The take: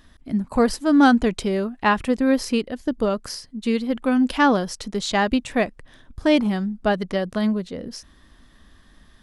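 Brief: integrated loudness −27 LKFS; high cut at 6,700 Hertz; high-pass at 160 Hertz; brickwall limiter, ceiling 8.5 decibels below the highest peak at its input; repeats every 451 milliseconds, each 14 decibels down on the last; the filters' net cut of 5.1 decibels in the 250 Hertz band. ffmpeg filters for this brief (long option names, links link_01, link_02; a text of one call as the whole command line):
ffmpeg -i in.wav -af "highpass=160,lowpass=6700,equalizer=frequency=250:width_type=o:gain=-5,alimiter=limit=-14dB:level=0:latency=1,aecho=1:1:451|902:0.2|0.0399,volume=-0.5dB" out.wav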